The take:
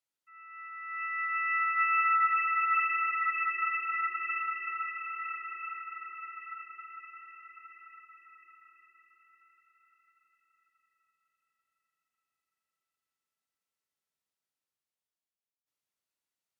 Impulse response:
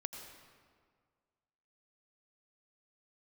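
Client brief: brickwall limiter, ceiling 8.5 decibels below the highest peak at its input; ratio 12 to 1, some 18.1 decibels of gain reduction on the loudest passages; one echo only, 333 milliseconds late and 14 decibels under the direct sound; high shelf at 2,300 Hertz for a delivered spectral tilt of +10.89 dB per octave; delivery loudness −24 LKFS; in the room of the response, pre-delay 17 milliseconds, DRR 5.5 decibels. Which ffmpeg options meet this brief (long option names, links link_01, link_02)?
-filter_complex "[0:a]highshelf=frequency=2300:gain=-6.5,acompressor=threshold=-44dB:ratio=12,alimiter=level_in=21dB:limit=-24dB:level=0:latency=1,volume=-21dB,aecho=1:1:333:0.2,asplit=2[link_01][link_02];[1:a]atrim=start_sample=2205,adelay=17[link_03];[link_02][link_03]afir=irnorm=-1:irlink=0,volume=-4dB[link_04];[link_01][link_04]amix=inputs=2:normalize=0,volume=26.5dB"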